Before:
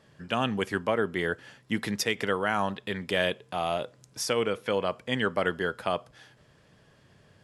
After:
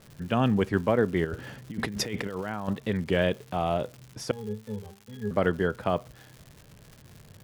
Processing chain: tilt -3 dB/oct; 1.25–2.68 negative-ratio compressor -33 dBFS, ratio -1; 4.31–5.31 octave resonator G#, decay 0.28 s; crackle 250/s -39 dBFS; record warp 33 1/3 rpm, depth 100 cents

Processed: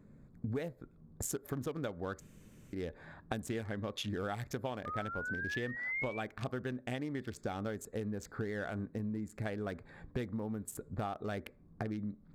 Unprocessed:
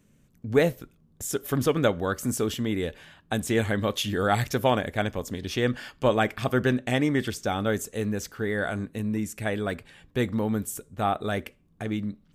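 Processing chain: Wiener smoothing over 15 samples; 3.69–4.1 high shelf 10000 Hz -12 dB; 4.85–6.22 painted sound rise 1200–2400 Hz -31 dBFS; compressor 12:1, threshold -39 dBFS, peak gain reduction 24 dB; 2.2–2.73 room tone; gain +4 dB

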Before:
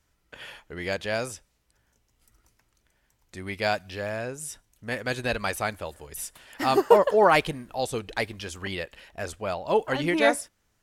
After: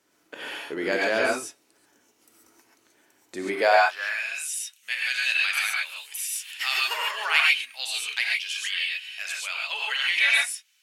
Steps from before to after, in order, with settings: dynamic EQ 1500 Hz, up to +6 dB, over -36 dBFS, Q 0.88; non-linear reverb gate 0.16 s rising, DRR -3 dB; high-pass sweep 310 Hz -> 2700 Hz, 3.5–4.25; in parallel at +3 dB: compressor, threshold -32 dBFS, peak gain reduction 19.5 dB; on the sum: gain -4.5 dB

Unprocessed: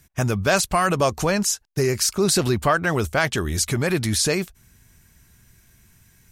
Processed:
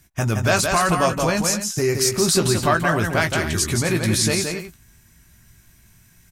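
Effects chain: bell 460 Hz -6 dB 0.23 oct; doubler 18 ms -7.5 dB; loudspeakers at several distances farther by 59 m -5 dB, 89 m -12 dB

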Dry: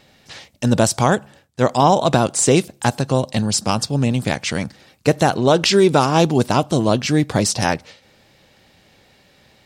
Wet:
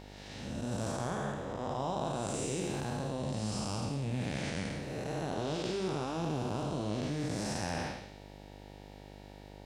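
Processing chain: time blur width 0.332 s; reverse; compressor 5:1, threshold -29 dBFS, peak gain reduction 13.5 dB; reverse; flange 1.3 Hz, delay 9.5 ms, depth 8.5 ms, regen -49%; buzz 50 Hz, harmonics 19, -51 dBFS -3 dB/oct

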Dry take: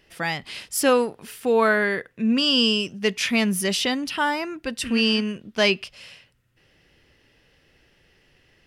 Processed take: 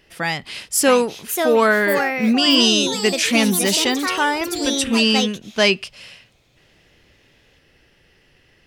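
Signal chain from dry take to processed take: dynamic EQ 7700 Hz, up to +6 dB, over -43 dBFS, Q 1.4; echoes that change speed 0.712 s, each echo +4 st, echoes 3, each echo -6 dB; gain +3.5 dB

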